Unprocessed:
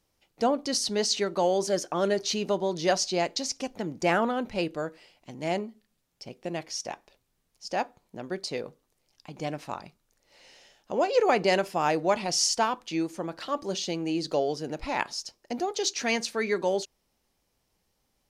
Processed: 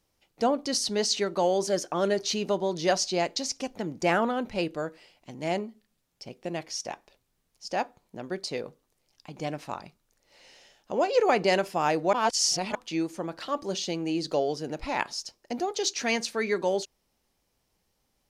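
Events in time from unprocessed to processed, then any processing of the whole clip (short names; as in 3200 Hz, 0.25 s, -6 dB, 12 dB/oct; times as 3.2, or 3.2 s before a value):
12.13–12.75 reverse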